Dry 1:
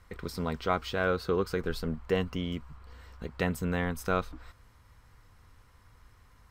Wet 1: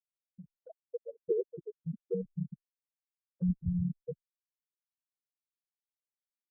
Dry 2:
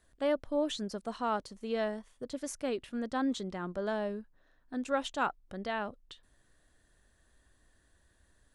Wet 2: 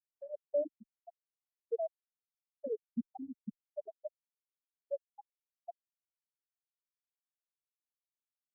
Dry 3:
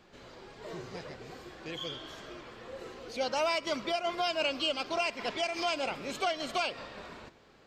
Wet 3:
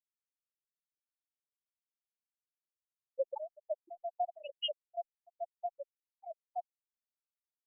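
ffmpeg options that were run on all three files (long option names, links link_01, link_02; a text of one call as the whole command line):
ffmpeg -i in.wav -filter_complex "[0:a]highpass=frequency=41:poles=1,acrossover=split=490|3000[link_01][link_02][link_03];[link_02]acompressor=threshold=-33dB:ratio=6[link_04];[link_01][link_04][link_03]amix=inputs=3:normalize=0,bandreject=frequency=50:width_type=h:width=6,bandreject=frequency=100:width_type=h:width=6,bandreject=frequency=150:width_type=h:width=6,bandreject=frequency=200:width_type=h:width=6,bandreject=frequency=250:width_type=h:width=6,bandreject=frequency=300:width_type=h:width=6,bandreject=frequency=350:width_type=h:width=6,bandreject=frequency=400:width_type=h:width=6,asplit=7[link_05][link_06][link_07][link_08][link_09][link_10][link_11];[link_06]adelay=194,afreqshift=-39,volume=-11.5dB[link_12];[link_07]adelay=388,afreqshift=-78,volume=-16.7dB[link_13];[link_08]adelay=582,afreqshift=-117,volume=-21.9dB[link_14];[link_09]adelay=776,afreqshift=-156,volume=-27.1dB[link_15];[link_10]adelay=970,afreqshift=-195,volume=-32.3dB[link_16];[link_11]adelay=1164,afreqshift=-234,volume=-37.5dB[link_17];[link_05][link_12][link_13][link_14][link_15][link_16][link_17]amix=inputs=7:normalize=0,afftfilt=real='re*gte(hypot(re,im),0.224)':imag='im*gte(hypot(re,im),0.224)':win_size=1024:overlap=0.75,asubboost=boost=10:cutoff=110,afftfilt=real='re*gte(hypot(re,im),0.0316)':imag='im*gte(hypot(re,im),0.0316)':win_size=1024:overlap=0.75,asplit=2[link_18][link_19];[link_19]acompressor=threshold=-47dB:ratio=4,volume=-3dB[link_20];[link_18][link_20]amix=inputs=2:normalize=0,highshelf=frequency=6100:gain=-8.5,asplit=2[link_21][link_22];[link_22]afreqshift=2.2[link_23];[link_21][link_23]amix=inputs=2:normalize=1,volume=3dB" out.wav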